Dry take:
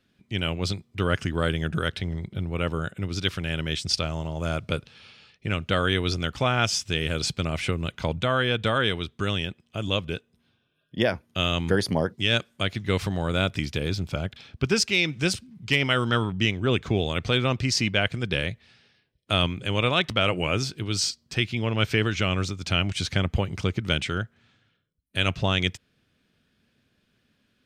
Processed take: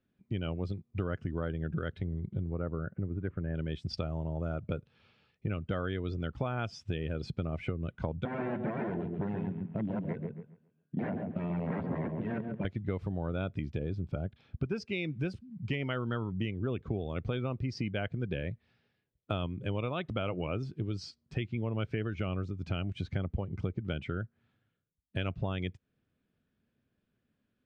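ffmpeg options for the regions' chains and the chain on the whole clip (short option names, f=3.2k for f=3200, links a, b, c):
-filter_complex "[0:a]asettb=1/sr,asplit=3[a][b][c];[a]atrim=end=2.534[d];[b]atrim=start=2.53:end=3.55,asetpts=PTS-STARTPTS,afade=t=in:d=0.004:c=qsin,afade=t=out:st=1.016:d=0.004:c=qsin,lowpass=f=1.9k:w=0.5412,lowpass=f=1.9k:w=1.3066,acompressor=mode=upward:threshold=-38dB:ratio=2.5:attack=3.2:release=140:knee=2.83:detection=peak,asoftclip=type=hard:threshold=-15dB[e];[c]atrim=start=3.546[f];[d][e]acrossfade=d=0.004:c1=hsin:c2=qsin[g];[g][f]acrossfade=d=0.004:c1=qsin:c2=hsin,asettb=1/sr,asplit=3[h][i][j];[h]atrim=end=8.254[k];[i]atrim=start=8.25:end=12.65,asetpts=PTS-STARTPTS,afade=t=in:d=0.004:c=qsin,afade=t=out:st=4.396:d=0.004:c=qsin,aeval=exprs='(mod(10.6*val(0)+1,2)-1)/10.6':c=same,highpass=140,equalizer=f=150:t=q:w=4:g=8,equalizer=f=220:t=q:w=4:g=8,equalizer=f=790:t=q:w=4:g=-3,equalizer=f=1.2k:t=q:w=4:g=-6,lowpass=f=2.6k:w=0.5412,lowpass=f=2.6k:w=1.3066,asplit=2[l][m];[m]adelay=137,lowpass=f=1.9k:p=1,volume=-5dB,asplit=2[n][o];[o]adelay=137,lowpass=f=1.9k:p=1,volume=0.38,asplit=2[p][q];[q]adelay=137,lowpass=f=1.9k:p=1,volume=0.38,asplit=2[r][s];[s]adelay=137,lowpass=f=1.9k:p=1,volume=0.38,asplit=2[t][u];[u]adelay=137,lowpass=f=1.9k:p=1,volume=0.38[v];[l][n][p][r][t][v]amix=inputs=6:normalize=0,atrim=end_sample=194040[w];[j]atrim=start=12.646[x];[k][w]acrossfade=d=0.004:c1=hsin:c2=qsin[y];[y][x]acrossfade=d=0.004:c1=qsin:c2=hsin,lowpass=f=1k:p=1,afftdn=nr=12:nf=-36,acompressor=threshold=-35dB:ratio=5,volume=3.5dB"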